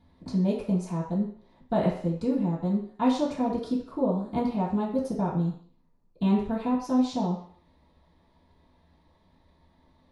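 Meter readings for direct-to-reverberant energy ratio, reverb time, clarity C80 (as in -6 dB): -11.0 dB, 0.55 s, 9.0 dB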